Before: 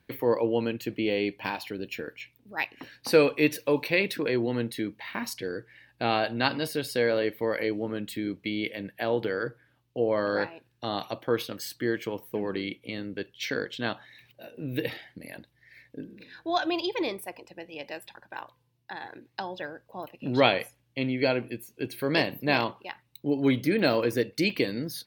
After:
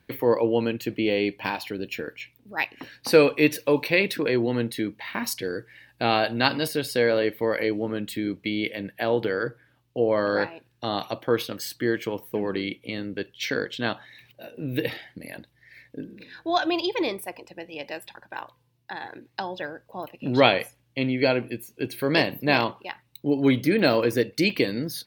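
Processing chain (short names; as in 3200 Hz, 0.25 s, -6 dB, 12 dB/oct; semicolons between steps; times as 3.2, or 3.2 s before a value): 5.24–6.68 high shelf 6200 Hz +6 dB; gain +3.5 dB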